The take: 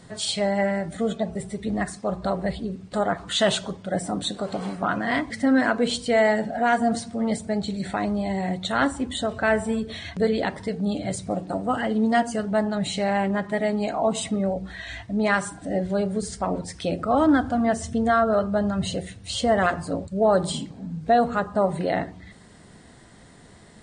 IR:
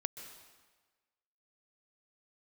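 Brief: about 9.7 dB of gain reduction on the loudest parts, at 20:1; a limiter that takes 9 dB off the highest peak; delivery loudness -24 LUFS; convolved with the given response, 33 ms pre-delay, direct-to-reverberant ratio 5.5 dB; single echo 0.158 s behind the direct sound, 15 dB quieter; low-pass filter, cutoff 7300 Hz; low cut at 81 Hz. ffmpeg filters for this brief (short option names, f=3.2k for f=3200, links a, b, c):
-filter_complex "[0:a]highpass=81,lowpass=7.3k,acompressor=threshold=-24dB:ratio=20,alimiter=limit=-23dB:level=0:latency=1,aecho=1:1:158:0.178,asplit=2[a][b];[1:a]atrim=start_sample=2205,adelay=33[c];[b][c]afir=irnorm=-1:irlink=0,volume=-5.5dB[d];[a][d]amix=inputs=2:normalize=0,volume=7dB"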